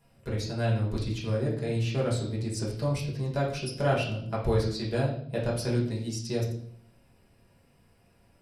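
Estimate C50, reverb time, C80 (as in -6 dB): 5.5 dB, 0.60 s, 9.5 dB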